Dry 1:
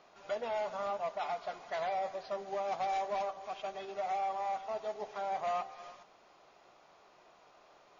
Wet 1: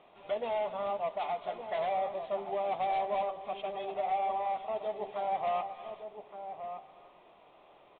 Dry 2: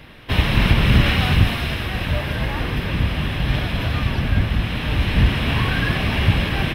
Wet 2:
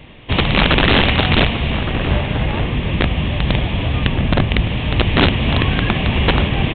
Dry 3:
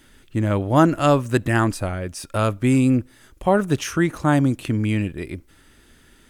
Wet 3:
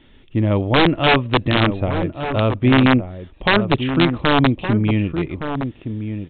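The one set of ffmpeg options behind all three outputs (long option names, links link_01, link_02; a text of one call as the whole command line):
ffmpeg -i in.wav -filter_complex "[0:a]equalizer=frequency=1500:width=2.5:gain=-10,aresample=8000,aeval=exprs='(mod(3.35*val(0)+1,2)-1)/3.35':channel_layout=same,aresample=44100,asplit=2[link_01][link_02];[link_02]adelay=1166,volume=-8dB,highshelf=frequency=4000:gain=-26.2[link_03];[link_01][link_03]amix=inputs=2:normalize=0,volume=3.5dB" out.wav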